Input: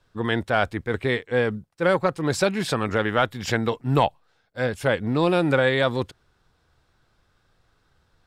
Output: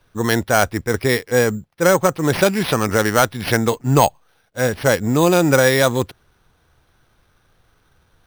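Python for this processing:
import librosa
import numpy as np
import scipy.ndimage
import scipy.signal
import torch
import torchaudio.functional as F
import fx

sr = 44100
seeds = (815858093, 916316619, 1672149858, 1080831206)

y = np.repeat(x[::6], 6)[:len(x)]
y = y * librosa.db_to_amplitude(6.0)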